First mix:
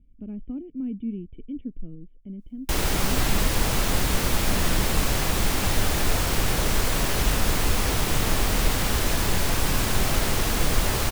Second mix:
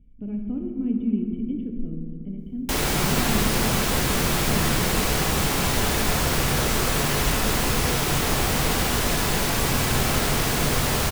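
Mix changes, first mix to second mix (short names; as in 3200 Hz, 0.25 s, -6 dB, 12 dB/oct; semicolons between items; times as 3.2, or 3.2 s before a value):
background: add low shelf 63 Hz -9.5 dB; reverb: on, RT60 2.8 s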